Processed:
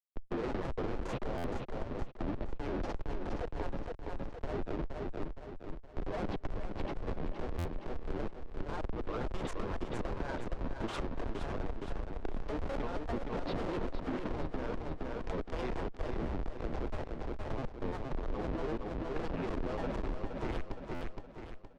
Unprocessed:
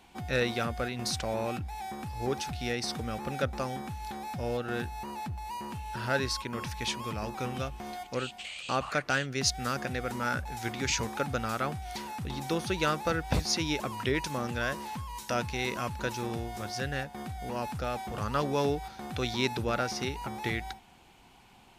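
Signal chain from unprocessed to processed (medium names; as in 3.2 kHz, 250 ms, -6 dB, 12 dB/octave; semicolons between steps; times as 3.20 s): octave divider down 1 oct, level +2 dB; high-pass 190 Hz 24 dB/octave; de-hum 261.8 Hz, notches 34; Schmitt trigger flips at -29.5 dBFS; three-band isolator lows -20 dB, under 360 Hz, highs -22 dB, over 7.2 kHz; peak limiter -34 dBFS, peak gain reduction 8 dB; granulator, spray 22 ms, pitch spread up and down by 7 st; tilt EQ -4.5 dB/octave; on a send: feedback delay 467 ms, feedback 41%, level -6 dB; on the sum: compression, threshold -41 dBFS, peak gain reduction 9 dB; buffer glitch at 1.37/7.58/20.94 s, samples 512, times 5; trim +9.5 dB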